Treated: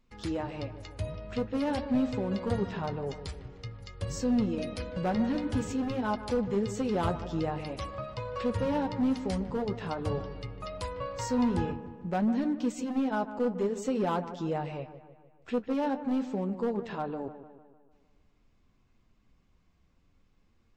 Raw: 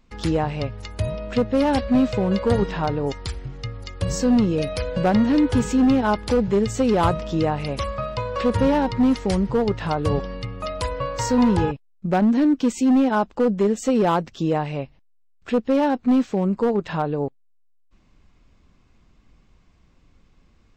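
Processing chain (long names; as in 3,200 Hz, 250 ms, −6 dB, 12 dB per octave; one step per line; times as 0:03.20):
flanger 0.48 Hz, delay 7.9 ms, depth 4.6 ms, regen −47%
delay with a low-pass on its return 151 ms, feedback 52%, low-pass 2,000 Hz, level −12 dB
level −6.5 dB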